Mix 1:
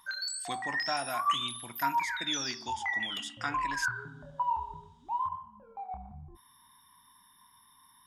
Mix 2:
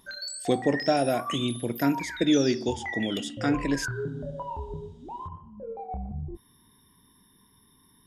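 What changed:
speech +4.0 dB; master: add resonant low shelf 690 Hz +12.5 dB, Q 3

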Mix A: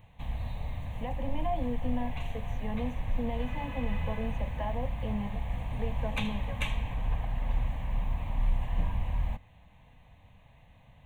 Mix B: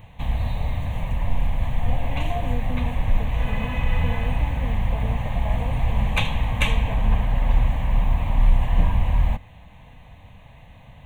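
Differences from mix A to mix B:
speech: entry +0.85 s; background +11.0 dB

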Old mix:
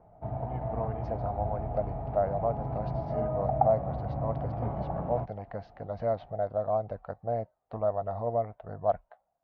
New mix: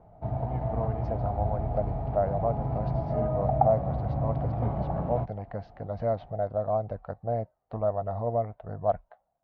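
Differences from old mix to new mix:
background: remove air absorption 270 m; master: add low shelf 280 Hz +5.5 dB

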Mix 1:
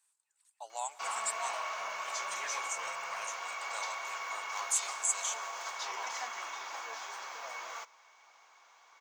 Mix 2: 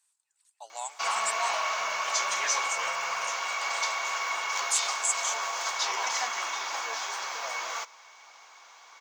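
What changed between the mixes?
background +7.5 dB; master: add bell 4900 Hz +4.5 dB 1.6 oct

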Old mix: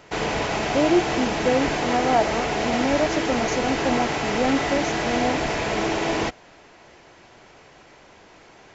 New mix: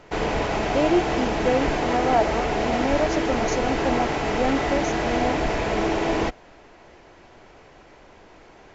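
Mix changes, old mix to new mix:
background: add tilt -2 dB/oct; master: add bell 130 Hz -6 dB 1.7 oct

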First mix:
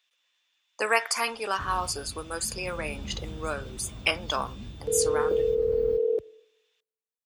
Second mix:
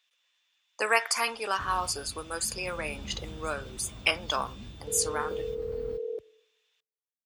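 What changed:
second sound -7.5 dB; master: add low shelf 460 Hz -4 dB

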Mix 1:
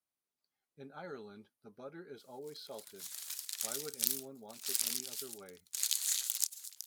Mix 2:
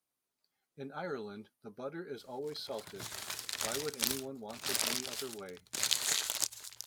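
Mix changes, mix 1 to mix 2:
speech +6.5 dB; background: remove pre-emphasis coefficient 0.97

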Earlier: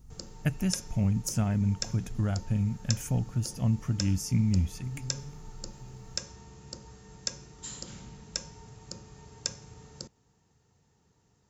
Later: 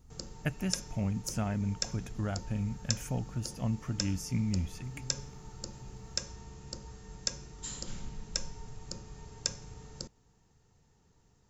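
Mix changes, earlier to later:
speech: add tone controls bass -7 dB, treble -6 dB; background: remove HPF 69 Hz

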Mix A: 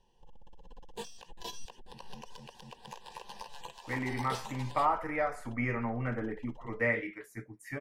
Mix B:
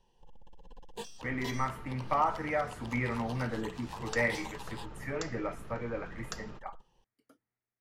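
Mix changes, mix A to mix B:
speech: entry -2.65 s; second sound: unmuted

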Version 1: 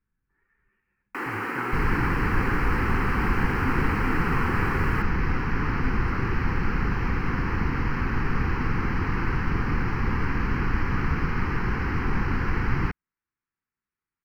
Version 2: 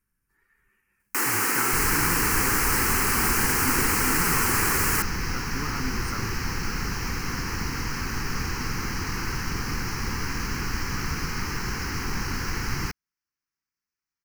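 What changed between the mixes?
second sound -5.5 dB; master: remove air absorption 490 m

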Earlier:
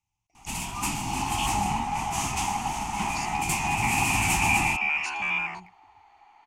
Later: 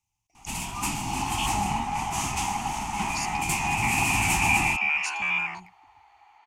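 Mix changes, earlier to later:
speech: add high shelf 5800 Hz +9.5 dB; second sound: add weighting filter A

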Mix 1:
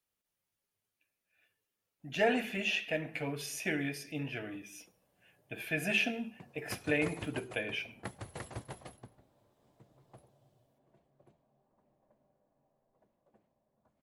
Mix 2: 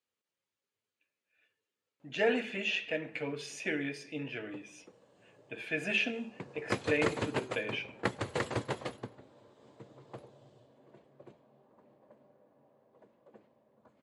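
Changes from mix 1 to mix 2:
background +12.0 dB; master: add speaker cabinet 140–7500 Hz, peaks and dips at 170 Hz -6 dB, 470 Hz +4 dB, 720 Hz -6 dB, 5600 Hz -5 dB

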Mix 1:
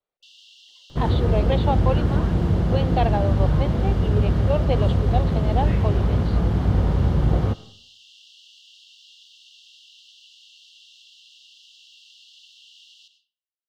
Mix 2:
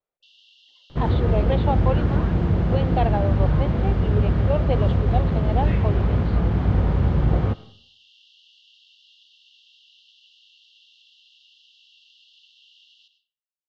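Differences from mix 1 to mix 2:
second sound: add high shelf 2600 Hz +10 dB; master: add air absorption 200 m

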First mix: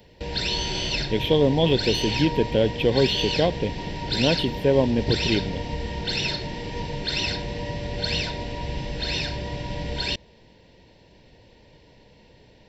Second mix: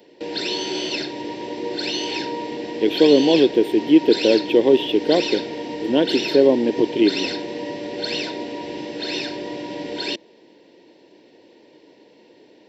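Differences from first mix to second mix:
speech: entry +1.70 s; master: add resonant high-pass 320 Hz, resonance Q 3.5

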